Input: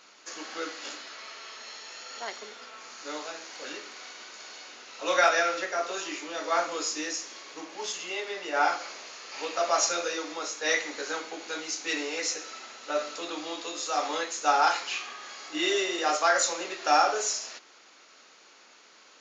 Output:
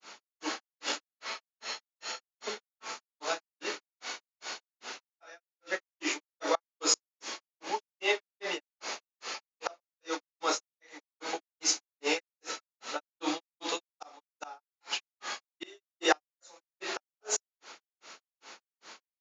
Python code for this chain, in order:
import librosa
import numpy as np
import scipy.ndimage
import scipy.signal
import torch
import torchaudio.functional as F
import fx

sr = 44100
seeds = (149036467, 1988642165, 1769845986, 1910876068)

y = fx.gate_flip(x, sr, shuts_db=-19.0, range_db=-31)
y = fx.peak_eq(y, sr, hz=870.0, db=5.0, octaves=0.21)
y = fx.granulator(y, sr, seeds[0], grain_ms=207.0, per_s=2.5, spray_ms=100.0, spread_st=0)
y = y * librosa.db_to_amplitude(7.5)